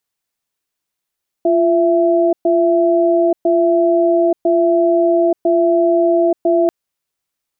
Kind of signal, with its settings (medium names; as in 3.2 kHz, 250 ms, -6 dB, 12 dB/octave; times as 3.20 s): cadence 345 Hz, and 666 Hz, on 0.88 s, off 0.12 s, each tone -13 dBFS 5.24 s